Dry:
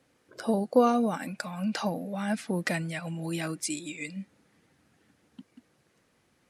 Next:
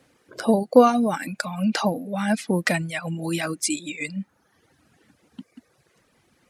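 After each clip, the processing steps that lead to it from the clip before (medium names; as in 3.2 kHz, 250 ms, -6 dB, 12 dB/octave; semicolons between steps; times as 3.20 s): reverb removal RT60 0.93 s; trim +8 dB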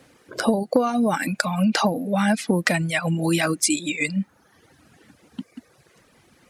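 compression 16:1, threshold -22 dBFS, peak gain reduction 15.5 dB; trim +6.5 dB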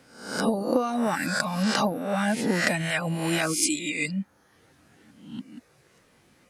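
reverse spectral sustain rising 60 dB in 0.61 s; trim -6 dB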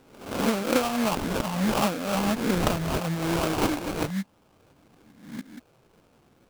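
sample-rate reducer 1.9 kHz, jitter 20%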